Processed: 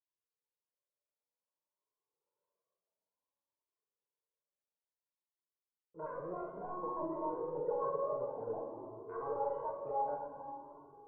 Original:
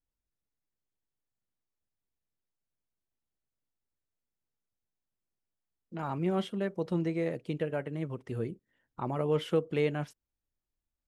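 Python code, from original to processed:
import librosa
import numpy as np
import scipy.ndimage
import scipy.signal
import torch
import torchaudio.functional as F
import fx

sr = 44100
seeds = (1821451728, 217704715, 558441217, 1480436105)

p1 = fx.pitch_trill(x, sr, semitones=11.0, every_ms=134)
p2 = fx.doppler_pass(p1, sr, speed_mps=9, closest_m=2.2, pass_at_s=2.45)
p3 = scipy.signal.sosfilt(scipy.signal.butter(2, 400.0, 'highpass', fs=sr, output='sos'), p2)
p4 = p3 + 0.55 * np.pad(p3, (int(2.0 * sr / 1000.0), 0))[:len(p3)]
p5 = fx.level_steps(p4, sr, step_db=23)
p6 = p4 + (p5 * 10.0 ** (-2.0 / 20.0))
p7 = fx.leveller(p6, sr, passes=2)
p8 = fx.rider(p7, sr, range_db=10, speed_s=0.5)
p9 = scipy.signal.sosfilt(scipy.signal.cheby1(4, 1.0, 1100.0, 'lowpass', fs=sr, output='sos'), p8)
p10 = p9 + fx.room_flutter(p9, sr, wall_m=7.7, rt60_s=0.39, dry=0)
p11 = fx.room_shoebox(p10, sr, seeds[0], volume_m3=140.0, walls='hard', distance_m=0.4)
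p12 = fx.comb_cascade(p11, sr, direction='rising', hz=0.56)
y = p12 * 10.0 ** (17.0 / 20.0)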